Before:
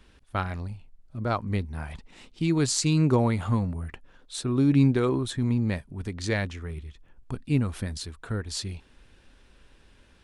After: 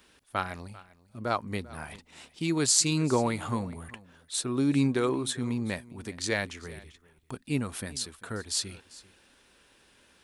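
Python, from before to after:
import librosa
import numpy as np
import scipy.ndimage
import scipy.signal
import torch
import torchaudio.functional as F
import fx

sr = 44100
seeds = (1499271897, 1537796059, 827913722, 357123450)

p1 = fx.highpass(x, sr, hz=320.0, slope=6)
p2 = fx.high_shelf(p1, sr, hz=8000.0, db=11.5)
y = p2 + fx.echo_single(p2, sr, ms=394, db=-20.0, dry=0)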